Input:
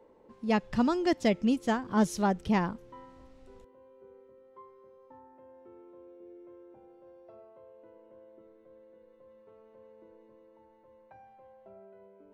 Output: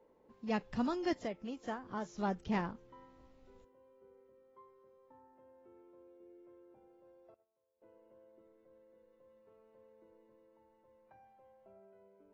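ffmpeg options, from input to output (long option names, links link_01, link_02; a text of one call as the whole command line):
ffmpeg -i in.wav -filter_complex "[0:a]asettb=1/sr,asplit=3[link_01][link_02][link_03];[link_01]atrim=end=1.194[link_04];[link_02]atrim=start=1.19:end=2.18,asetpts=PTS-STARTPTS,afade=type=in:duration=0.004:curve=qsin,afade=type=out:start_time=0.986:duration=0.004:curve=qsin,acrossover=split=470|1700[link_05][link_06][link_07];[link_05]acompressor=threshold=-37dB:ratio=4[link_08];[link_06]acompressor=threshold=-30dB:ratio=4[link_09];[link_07]acompressor=threshold=-50dB:ratio=4[link_10];[link_08][link_09][link_10]amix=inputs=3:normalize=0[link_11];[link_03]atrim=start=2.176[link_12];[link_04][link_11]acrossfade=duration=0.004:curve1=hsin:curve2=qsin[link_13];[link_13][link_12]acrossfade=duration=0.004:curve1=qsin:curve2=hsin,asettb=1/sr,asplit=3[link_14][link_15][link_16];[link_14]atrim=end=7.344[link_17];[link_15]atrim=start=7.34:end=7.82,asetpts=PTS-STARTPTS,afade=type=in:duration=0.004:curve=qsin,afade=type=out:start_time=0.476:duration=0.004:curve=qsin,agate=range=-22dB:threshold=-49dB:ratio=16:detection=peak[link_18];[link_16]atrim=start=7.816[link_19];[link_17][link_18]acrossfade=duration=0.004:curve1=hsin:curve2=qsin[link_20];[link_20][link_19]acrossfade=duration=0.004:curve1=qsin:curve2=hsin,volume=-8dB" -ar 22050 -c:a aac -b:a 24k out.aac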